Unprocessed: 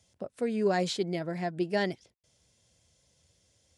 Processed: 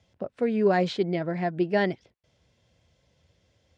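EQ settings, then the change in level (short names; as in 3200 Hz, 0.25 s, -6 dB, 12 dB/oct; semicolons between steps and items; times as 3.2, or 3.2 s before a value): LPF 3000 Hz 12 dB/oct; +5.0 dB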